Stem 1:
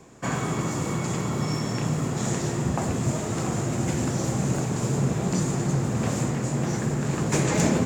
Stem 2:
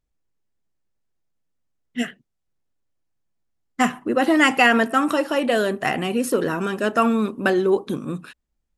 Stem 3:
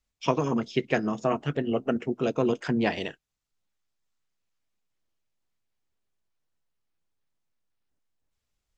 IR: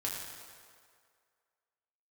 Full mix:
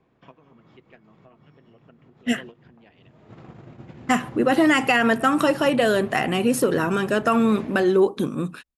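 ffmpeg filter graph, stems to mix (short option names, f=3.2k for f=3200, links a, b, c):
-filter_complex "[0:a]volume=-2.5dB[a];[1:a]adelay=300,volume=2dB[b];[2:a]highshelf=f=2.1k:g=7,volume=-12.5dB,asplit=2[c][d];[d]apad=whole_len=346542[e];[a][e]sidechaincompress=threshold=-48dB:ratio=10:attack=21:release=324[f];[f][c]amix=inputs=2:normalize=0,lowpass=f=3.7k:w=0.5412,lowpass=f=3.7k:w=1.3066,acompressor=threshold=-39dB:ratio=3,volume=0dB[g];[b][g]amix=inputs=2:normalize=0,agate=range=-12dB:threshold=-37dB:ratio=16:detection=peak,alimiter=limit=-9dB:level=0:latency=1:release=153"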